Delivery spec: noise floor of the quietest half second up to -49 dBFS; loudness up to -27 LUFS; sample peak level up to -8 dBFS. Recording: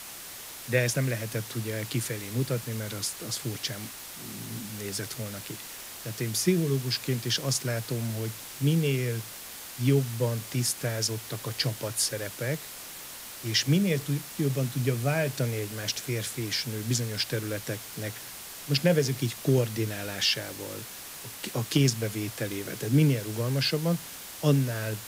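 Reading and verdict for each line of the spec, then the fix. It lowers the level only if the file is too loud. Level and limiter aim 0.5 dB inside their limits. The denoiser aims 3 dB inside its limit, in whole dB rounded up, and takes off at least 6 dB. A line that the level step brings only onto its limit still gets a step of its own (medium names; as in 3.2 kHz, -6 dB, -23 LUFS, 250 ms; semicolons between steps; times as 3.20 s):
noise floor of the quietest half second -42 dBFS: fail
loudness -29.0 LUFS: pass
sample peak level -10.0 dBFS: pass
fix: noise reduction 10 dB, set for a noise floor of -42 dBFS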